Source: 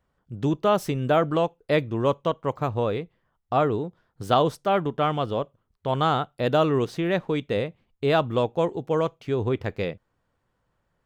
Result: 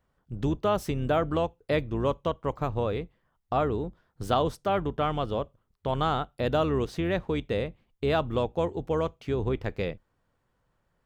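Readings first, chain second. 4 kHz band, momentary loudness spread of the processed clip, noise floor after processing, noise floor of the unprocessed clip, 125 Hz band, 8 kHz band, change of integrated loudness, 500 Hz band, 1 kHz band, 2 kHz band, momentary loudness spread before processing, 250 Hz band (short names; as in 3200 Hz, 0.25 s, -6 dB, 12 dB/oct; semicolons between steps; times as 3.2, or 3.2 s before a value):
-4.5 dB, 8 LU, -75 dBFS, -75 dBFS, -3.0 dB, n/a, -4.0 dB, -4.0 dB, -4.5 dB, -4.0 dB, 9 LU, -3.5 dB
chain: octaver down 2 oct, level -6 dB; in parallel at +1.5 dB: compressor, threshold -27 dBFS, peak gain reduction 11.5 dB; on the sum: gain -7.5 dB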